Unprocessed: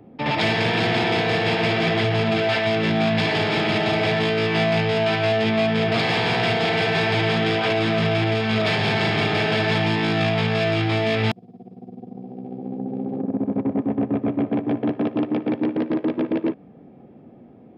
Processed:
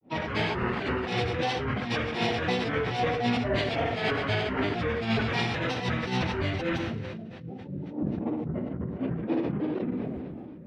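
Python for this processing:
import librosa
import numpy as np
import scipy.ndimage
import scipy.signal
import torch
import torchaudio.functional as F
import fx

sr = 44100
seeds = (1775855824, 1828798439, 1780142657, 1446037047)

y = fx.pitch_trill(x, sr, semitones=-7.5, every_ms=297)
y = fx.spec_repair(y, sr, seeds[0], start_s=5.64, length_s=0.95, low_hz=650.0, high_hz=2100.0, source='both')
y = fx.stretch_vocoder_free(y, sr, factor=0.6)
y = fx.granulator(y, sr, seeds[1], grain_ms=241.0, per_s=3.8, spray_ms=11.0, spread_st=3)
y = fx.rev_double_slope(y, sr, seeds[2], early_s=0.43, late_s=4.4, knee_db=-18, drr_db=17.5)
y = fx.sustainer(y, sr, db_per_s=23.0)
y = y * 10.0 ** (-2.0 / 20.0)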